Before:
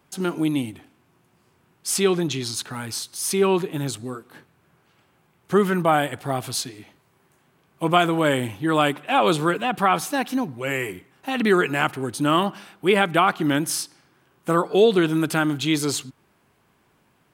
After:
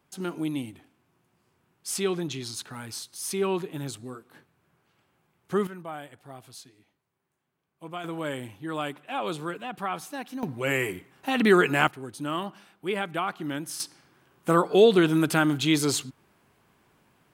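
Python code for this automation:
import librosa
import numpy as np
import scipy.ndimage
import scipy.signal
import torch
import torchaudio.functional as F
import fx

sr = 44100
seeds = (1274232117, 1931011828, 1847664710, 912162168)

y = fx.gain(x, sr, db=fx.steps((0.0, -7.5), (5.67, -19.0), (8.04, -12.0), (10.43, -0.5), (11.88, -11.0), (13.8, -1.0)))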